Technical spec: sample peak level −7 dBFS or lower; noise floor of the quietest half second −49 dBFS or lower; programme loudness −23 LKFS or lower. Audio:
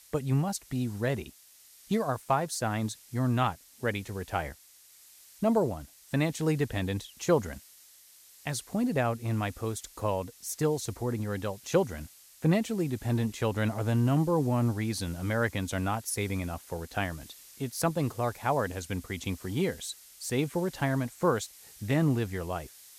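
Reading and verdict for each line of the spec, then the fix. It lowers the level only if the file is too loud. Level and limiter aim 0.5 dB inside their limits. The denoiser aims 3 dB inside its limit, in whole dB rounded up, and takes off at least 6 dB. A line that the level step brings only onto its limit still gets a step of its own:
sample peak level −13.5 dBFS: in spec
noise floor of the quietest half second −57 dBFS: in spec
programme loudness −30.5 LKFS: in spec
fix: no processing needed

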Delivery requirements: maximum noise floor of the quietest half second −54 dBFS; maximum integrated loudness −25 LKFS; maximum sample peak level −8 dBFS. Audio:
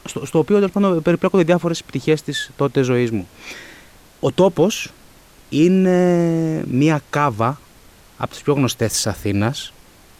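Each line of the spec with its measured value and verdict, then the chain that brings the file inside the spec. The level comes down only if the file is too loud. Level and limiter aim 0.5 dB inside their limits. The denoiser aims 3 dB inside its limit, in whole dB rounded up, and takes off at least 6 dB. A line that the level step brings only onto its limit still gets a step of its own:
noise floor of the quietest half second −47 dBFS: out of spec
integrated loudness −18.0 LKFS: out of spec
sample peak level −3.5 dBFS: out of spec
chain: level −7.5 dB

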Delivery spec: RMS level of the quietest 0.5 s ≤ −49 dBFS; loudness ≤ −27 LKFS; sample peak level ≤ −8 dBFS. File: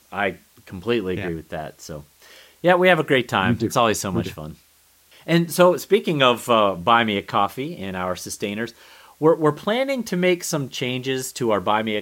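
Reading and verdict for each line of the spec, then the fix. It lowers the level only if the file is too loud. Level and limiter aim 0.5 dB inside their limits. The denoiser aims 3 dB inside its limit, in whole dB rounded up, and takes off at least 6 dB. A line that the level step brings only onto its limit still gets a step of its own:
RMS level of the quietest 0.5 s −57 dBFS: in spec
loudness −21.0 LKFS: out of spec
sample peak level −4.0 dBFS: out of spec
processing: level −6.5 dB

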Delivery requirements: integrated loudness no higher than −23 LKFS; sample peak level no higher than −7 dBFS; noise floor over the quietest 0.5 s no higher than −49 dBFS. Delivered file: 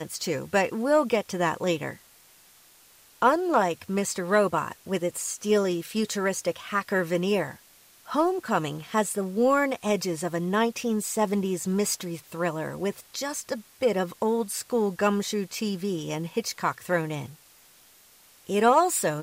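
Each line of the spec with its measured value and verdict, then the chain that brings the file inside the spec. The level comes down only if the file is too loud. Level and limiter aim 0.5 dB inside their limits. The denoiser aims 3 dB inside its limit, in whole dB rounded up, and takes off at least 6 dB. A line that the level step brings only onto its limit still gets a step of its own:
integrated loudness −26.5 LKFS: in spec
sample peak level −9.0 dBFS: in spec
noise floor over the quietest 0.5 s −56 dBFS: in spec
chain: no processing needed

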